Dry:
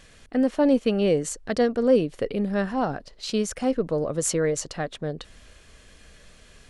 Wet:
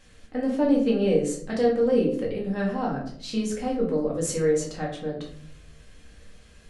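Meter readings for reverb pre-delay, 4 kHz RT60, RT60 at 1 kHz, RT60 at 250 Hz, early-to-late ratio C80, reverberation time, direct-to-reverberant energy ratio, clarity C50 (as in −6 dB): 4 ms, 0.35 s, 0.50 s, 0.95 s, 10.0 dB, 0.60 s, −3.5 dB, 6.0 dB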